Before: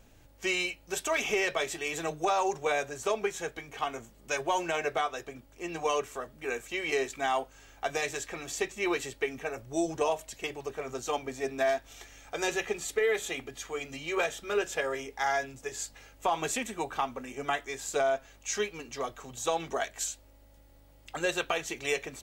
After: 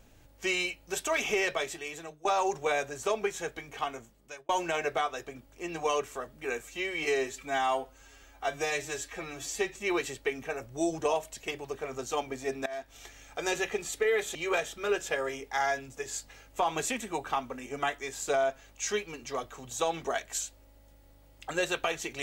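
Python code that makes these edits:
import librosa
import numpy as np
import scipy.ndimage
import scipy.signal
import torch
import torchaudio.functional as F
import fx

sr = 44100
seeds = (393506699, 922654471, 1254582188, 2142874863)

y = fx.edit(x, sr, fx.fade_out_to(start_s=1.48, length_s=0.77, floor_db=-21.0),
    fx.fade_out_span(start_s=3.79, length_s=0.7),
    fx.stretch_span(start_s=6.63, length_s=2.08, factor=1.5),
    fx.fade_in_from(start_s=11.62, length_s=0.38, floor_db=-20.0),
    fx.cut(start_s=13.31, length_s=0.7), tone=tone)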